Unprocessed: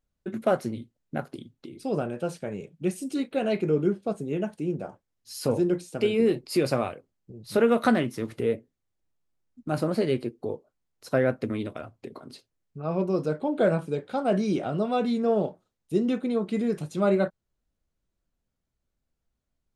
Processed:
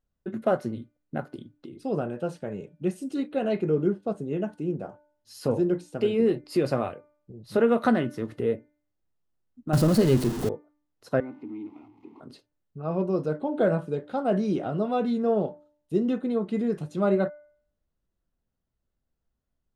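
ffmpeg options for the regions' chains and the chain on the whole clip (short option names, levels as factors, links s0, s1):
-filter_complex "[0:a]asettb=1/sr,asplit=3[s0][s1][s2];[s0]atrim=end=9.734[s3];[s1]atrim=start=9.73:end=10.49,asetpts=PTS-STARTPTS,afade=t=in:d=0.004:c=qsin,afade=t=out:st=0.756:d=0.004:c=qsin,aeval=exprs='val(0)+0.5*0.0355*sgn(val(0))':c=same,bass=f=250:g=9,treble=f=4000:g=12[s4];[s2]atrim=start=10.486[s5];[s3][s4]acrossfade=d=0.004:c1=hsin:c2=qsin[s6];[s6][s5]acrossfade=d=0.004:c1=qsin:c2=hsin,asettb=1/sr,asplit=3[s7][s8][s9];[s7]atrim=end=11.204[s10];[s8]atrim=start=11.2:end=12.2,asetpts=PTS-STARTPTS,afade=t=in:d=0.004:c=qsin,afade=t=out:st=0.996:d=0.004:c=qsin,aeval=exprs='val(0)+0.5*0.015*sgn(val(0))':c=same,asplit=3[s11][s12][s13];[s11]bandpass=f=300:t=q:w=8,volume=1[s14];[s12]bandpass=f=870:t=q:w=8,volume=0.501[s15];[s13]bandpass=f=2240:t=q:w=8,volume=0.355[s16];[s14][s15][s16]amix=inputs=3:normalize=0[s17];[s9]atrim=start=12.196[s18];[s10][s17]acrossfade=d=0.004:c1=hsin:c2=qsin[s19];[s19][s18]acrossfade=d=0.004:c1=qsin:c2=hsin,highshelf=f=3400:g=-9.5,bandreject=f=2300:w=11,bandreject=f=296.5:t=h:w=4,bandreject=f=593:t=h:w=4,bandreject=f=889.5:t=h:w=4,bandreject=f=1186:t=h:w=4,bandreject=f=1482.5:t=h:w=4,bandreject=f=1779:t=h:w=4,bandreject=f=2075.5:t=h:w=4,bandreject=f=2372:t=h:w=4"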